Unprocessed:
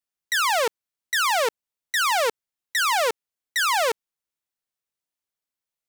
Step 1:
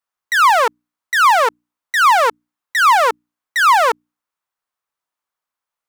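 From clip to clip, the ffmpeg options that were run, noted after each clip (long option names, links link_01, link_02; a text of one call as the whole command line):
ffmpeg -i in.wav -af "equalizer=frequency=1100:width_type=o:width=1.5:gain=14,bandreject=frequency=60:width_type=h:width=6,bandreject=frequency=120:width_type=h:width=6,bandreject=frequency=180:width_type=h:width=6,bandreject=frequency=240:width_type=h:width=6,bandreject=frequency=300:width_type=h:width=6" out.wav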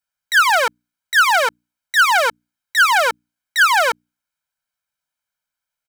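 ffmpeg -i in.wav -af "equalizer=frequency=810:width=1.8:gain=-10,aecho=1:1:1.3:0.84" out.wav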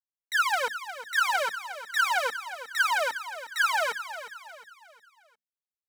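ffmpeg -i in.wav -filter_complex "[0:a]acrusher=bits=10:mix=0:aa=0.000001,flanger=delay=3.2:depth=2:regen=-3:speed=0.35:shape=sinusoidal,asplit=2[link_01][link_02];[link_02]aecho=0:1:358|716|1074|1432:0.251|0.103|0.0422|0.0173[link_03];[link_01][link_03]amix=inputs=2:normalize=0,volume=-8.5dB" out.wav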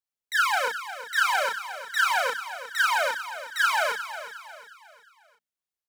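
ffmpeg -i in.wav -filter_complex "[0:a]asplit=2[link_01][link_02];[link_02]adelay=34,volume=-2.5dB[link_03];[link_01][link_03]amix=inputs=2:normalize=0" out.wav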